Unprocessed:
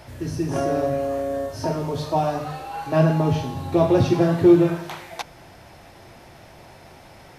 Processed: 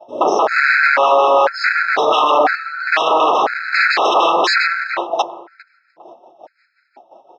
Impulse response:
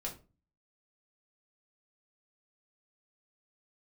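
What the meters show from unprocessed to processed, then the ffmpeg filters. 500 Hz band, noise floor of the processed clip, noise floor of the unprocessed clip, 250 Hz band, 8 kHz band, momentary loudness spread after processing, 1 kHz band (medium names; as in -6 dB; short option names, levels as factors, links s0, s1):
+4.5 dB, -62 dBFS, -47 dBFS, -9.5 dB, no reading, 8 LU, +14.5 dB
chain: -filter_complex "[0:a]tremolo=f=5.6:d=0.33,afftdn=nr=13:nf=-43,tiltshelf=f=850:g=7.5,acrossover=split=3400[s0][s1];[s0]asoftclip=type=tanh:threshold=0.2[s2];[s1]acontrast=28[s3];[s2][s3]amix=inputs=2:normalize=0,aeval=exprs='val(0)+0.00158*(sin(2*PI*60*n/s)+sin(2*PI*2*60*n/s)/2+sin(2*PI*3*60*n/s)/3+sin(2*PI*4*60*n/s)/4+sin(2*PI*5*60*n/s)/5)':c=same,agate=range=0.0224:threshold=0.0224:ratio=3:detection=peak,aeval=exprs='0.0531*(abs(mod(val(0)/0.0531+3,4)-2)-1)':c=same,highpass=f=460:w=0.5412,highpass=f=460:w=1.3066,equalizer=f=500:t=q:w=4:g=-5,equalizer=f=1500:t=q:w=4:g=4,equalizer=f=3100:t=q:w=4:g=-5,lowpass=f=4800:w=0.5412,lowpass=f=4800:w=1.3066,asplit=2[s4][s5];[s5]adelay=403,lowpass=f=850:p=1,volume=0.141,asplit=2[s6][s7];[s7]adelay=403,lowpass=f=850:p=1,volume=0.38,asplit=2[s8][s9];[s9]adelay=403,lowpass=f=850:p=1,volume=0.38[s10];[s6][s8][s10]amix=inputs=3:normalize=0[s11];[s4][s11]amix=inputs=2:normalize=0,alimiter=level_in=26.6:limit=0.891:release=50:level=0:latency=1,afftfilt=real='re*gt(sin(2*PI*1*pts/sr)*(1-2*mod(floor(b*sr/1024/1300),2)),0)':imag='im*gt(sin(2*PI*1*pts/sr)*(1-2*mod(floor(b*sr/1024/1300),2)),0)':win_size=1024:overlap=0.75,volume=0.794"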